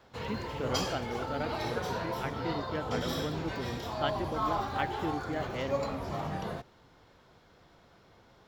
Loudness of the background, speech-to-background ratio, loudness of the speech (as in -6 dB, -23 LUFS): -35.5 LUFS, -3.0 dB, -38.5 LUFS